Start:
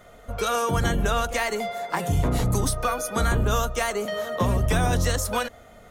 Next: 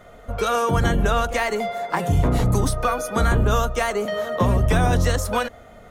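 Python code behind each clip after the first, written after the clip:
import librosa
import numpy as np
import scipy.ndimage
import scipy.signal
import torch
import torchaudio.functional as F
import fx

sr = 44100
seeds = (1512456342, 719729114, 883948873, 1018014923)

y = fx.high_shelf(x, sr, hz=3400.0, db=-7.0)
y = y * librosa.db_to_amplitude(4.0)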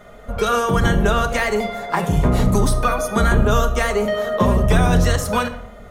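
y = fx.room_shoebox(x, sr, seeds[0], volume_m3=2000.0, walls='furnished', distance_m=1.3)
y = y * librosa.db_to_amplitude(2.0)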